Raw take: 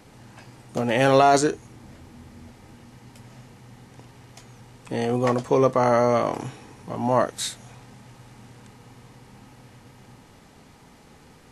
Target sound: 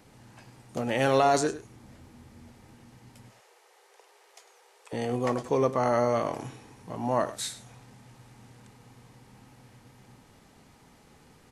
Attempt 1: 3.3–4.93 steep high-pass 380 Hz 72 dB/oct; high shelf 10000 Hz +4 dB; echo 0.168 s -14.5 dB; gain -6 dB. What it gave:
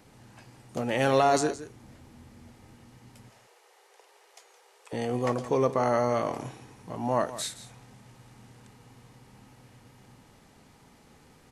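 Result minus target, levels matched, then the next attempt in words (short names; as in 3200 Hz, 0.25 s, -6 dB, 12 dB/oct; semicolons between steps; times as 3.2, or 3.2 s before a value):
echo 67 ms late
3.3–4.93 steep high-pass 380 Hz 72 dB/oct; high shelf 10000 Hz +4 dB; echo 0.101 s -14.5 dB; gain -6 dB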